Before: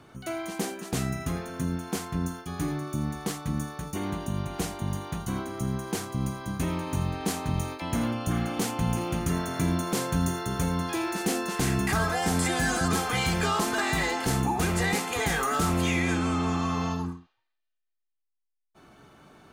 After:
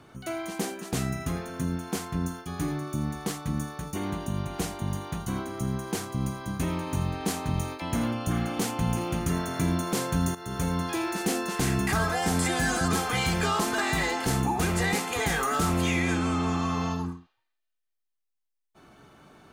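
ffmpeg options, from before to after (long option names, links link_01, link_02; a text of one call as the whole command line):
ffmpeg -i in.wav -filter_complex "[0:a]asplit=2[link_01][link_02];[link_01]atrim=end=10.35,asetpts=PTS-STARTPTS,afade=type=out:start_time=10.346:duration=0.004:curve=hsin:silence=0.223872[link_03];[link_02]atrim=start=10.35,asetpts=PTS-STARTPTS,afade=type=in:duration=0.43:curve=qsin:silence=0.223872[link_04];[link_03][link_04]concat=n=2:v=0:a=1" out.wav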